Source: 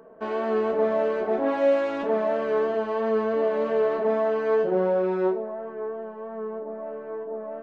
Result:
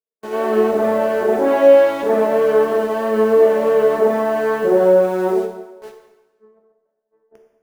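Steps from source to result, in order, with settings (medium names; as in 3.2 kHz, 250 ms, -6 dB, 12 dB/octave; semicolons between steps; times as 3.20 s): gate -28 dBFS, range -56 dB; in parallel at -4 dB: bit crusher 7-bit; on the sum: peaking EQ 420 Hz +5.5 dB 0.26 oct; plate-style reverb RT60 1.1 s, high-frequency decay 0.9×, DRR 3 dB; trim +2 dB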